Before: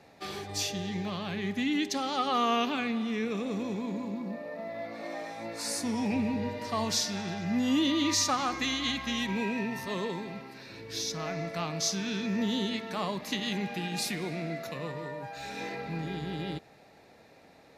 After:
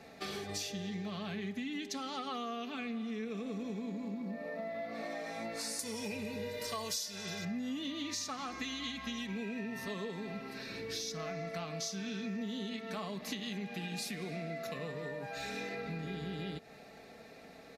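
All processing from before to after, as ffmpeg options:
-filter_complex "[0:a]asettb=1/sr,asplit=3[s0][s1][s2];[s0]atrim=end=5.794[s3];[s1]atrim=start=5.79:end=7.45,asetpts=PTS-STARTPTS,afade=t=in:d=0.004:c=qsin,afade=t=out:st=1.656:d=0.004:c=qsin,aemphasis=mode=production:type=75kf,aecho=1:1:2:0.6,atrim=end_sample=73206[s4];[s2]atrim=start=7.446[s5];[s3][s4]acrossfade=d=0.004:c1=hsin:c2=qsin[s6];[s6][s5]acrossfade=d=0.004:c1=qsin:c2=hsin,bandreject=f=930:w=7.5,aecho=1:1:4.5:0.43,acompressor=threshold=0.01:ratio=6,volume=1.33"

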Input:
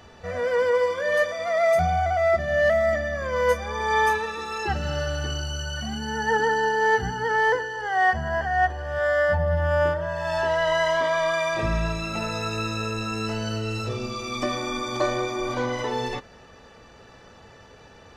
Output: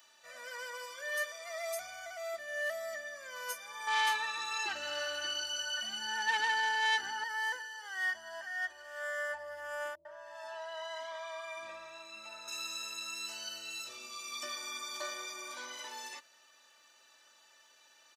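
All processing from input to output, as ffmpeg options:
-filter_complex "[0:a]asettb=1/sr,asplit=3[s0][s1][s2];[s0]atrim=end=3.874[s3];[s1]atrim=start=3.87:end=7.24,asetpts=PTS-STARTPTS,afade=t=in:d=0.004:c=qsin,afade=t=out:st=3.366:d=0.004:c=qsin,aeval=exprs='0.299*sin(PI/2*1.78*val(0)/0.299)':c=same,aemphasis=mode=reproduction:type=50fm[s4];[s2]atrim=start=7.236[s5];[s3][s4]acrossfade=d=0.004:c1=hsin:c2=qsin[s6];[s6][s5]acrossfade=d=0.004:c1=qsin:c2=hsin,asettb=1/sr,asplit=3[s7][s8][s9];[s7]atrim=end=9.954[s10];[s8]atrim=start=9.95:end=12.48,asetpts=PTS-STARTPTS,afade=t=in:d=0.004:c=qsin,afade=t=out:st=2.526:d=0.004:c=qsin,lowpass=f=1400:p=1,acrossover=split=340[s11][s12];[s12]adelay=100[s13];[s11][s13]amix=inputs=2:normalize=0,atrim=end_sample=111573[s14];[s9]atrim=start=12.476[s15];[s10][s14]acrossfade=d=0.004:c1=hsin:c2=qsin[s16];[s16][s15]acrossfade=d=0.004:c1=qsin:c2=hsin,highpass=f=270:p=1,aderivative,aecho=1:1:3.3:0.67,volume=0.841"

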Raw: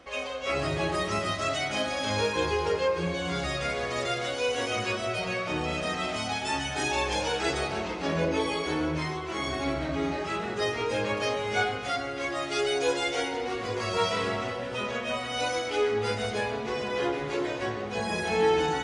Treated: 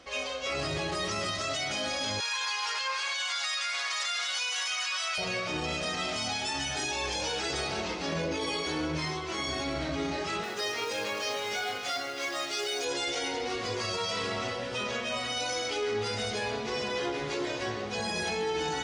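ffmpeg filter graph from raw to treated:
-filter_complex "[0:a]asettb=1/sr,asplit=3[s0][s1][s2];[s0]atrim=end=2.204[s3];[s1]atrim=start=2.2:end=5.18,asetpts=PTS-STARTPTS,afade=t=in:d=0.004:c=qsin,afade=t=out:st=2.976:d=0.004:c=qsin,highpass=f=990:w=0.5412,highpass=f=990:w=1.3066,acontrast=74[s4];[s2]atrim=start=5.176[s5];[s3][s4]acrossfade=d=0.004:c1=hsin:c2=qsin[s6];[s6][s5]acrossfade=d=0.004:c1=qsin:c2=hsin,asettb=1/sr,asplit=3[s7][s8][s9];[s7]atrim=end=10.434[s10];[s8]atrim=start=10.43:end=12.85,asetpts=PTS-STARTPTS,afade=t=in:d=0.004:c=qsin,afade=t=out:st=2.416:d=0.004:c=qsin,highpass=f=440:p=1,acrusher=bits=5:mode=log:mix=0:aa=0.000001[s11];[s9]atrim=start=12.846[s12];[s10][s11]acrossfade=d=0.004:c1=hsin:c2=qsin[s13];[s13][s12]acrossfade=d=0.004:c1=qsin:c2=hsin,equalizer=f=5200:t=o:w=1.5:g=9,alimiter=limit=0.0841:level=0:latency=1:release=15,volume=0.794"

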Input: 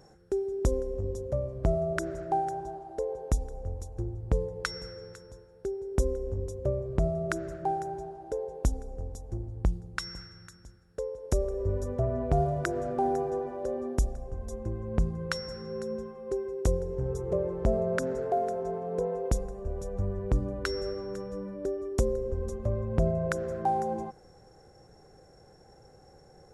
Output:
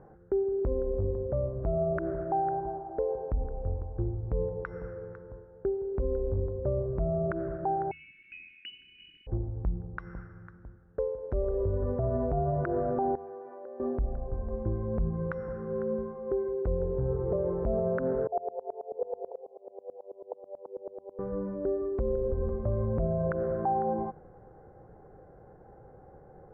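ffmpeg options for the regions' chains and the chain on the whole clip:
-filter_complex "[0:a]asettb=1/sr,asplit=3[s0][s1][s2];[s0]atrim=end=7.914[s3];[s1]atrim=start=7.91:end=9.27,asetpts=PTS-STARTPTS,afade=t=in:d=0.004:c=qsin,afade=t=out:st=1.356:d=0.004:c=qsin,lowpass=f=2600:t=q:w=0.5098,lowpass=f=2600:t=q:w=0.6013,lowpass=f=2600:t=q:w=0.9,lowpass=f=2600:t=q:w=2.563,afreqshift=-3000,acrusher=bits=7:mix=0:aa=0.5,asuperstop=centerf=820:order=8:qfactor=0.52[s4];[s2]atrim=start=9.266[s5];[s3][s4]acrossfade=d=0.004:c1=hsin:c2=qsin[s6];[s6][s5]acrossfade=d=0.004:c1=qsin:c2=hsin,asettb=1/sr,asplit=3[s7][s8][s9];[s7]atrim=end=13.154[s10];[s8]atrim=start=13.15:end=13.8,asetpts=PTS-STARTPTS,afade=t=in:d=0.004:c=qsin,afade=t=out:st=0.646:d=0.004:c=qsin,highpass=480,equalizer=f=710:t=o:w=2.8:g=-8.5,acompressor=threshold=0.00631:ratio=2.5:attack=3.2:release=140:knee=1:detection=peak[s11];[s9]atrim=start=13.796[s12];[s10][s11]acrossfade=d=0.004:c1=hsin:c2=qsin[s13];[s13][s12]acrossfade=d=0.004:c1=qsin:c2=hsin,asettb=1/sr,asplit=3[s14][s15][s16];[s14]atrim=end=18.274[s17];[s15]atrim=start=18.27:end=21.19,asetpts=PTS-STARTPTS,afade=t=in:d=0.004:c=qsin,afade=t=out:st=2.916:d=0.004:c=qsin,asuperpass=centerf=610:order=12:qfactor=1.2,aeval=exprs='val(0)*pow(10,-26*if(lt(mod(-9.2*n/s,1),2*abs(-9.2)/1000),1-mod(-9.2*n/s,1)/(2*abs(-9.2)/1000),(mod(-9.2*n/s,1)-2*abs(-9.2)/1000)/(1-2*abs(-9.2)/1000))/20)':c=same[s18];[s16]atrim=start=21.186[s19];[s17][s18]acrossfade=d=0.004:c1=hsin:c2=qsin[s20];[s20][s19]acrossfade=d=0.004:c1=qsin:c2=hsin,lowpass=f=1500:w=0.5412,lowpass=f=1500:w=1.3066,bandreject=f=78.97:t=h:w=4,bandreject=f=157.94:t=h:w=4,bandreject=f=236.91:t=h:w=4,alimiter=limit=0.0631:level=0:latency=1:release=93,volume=1.5"

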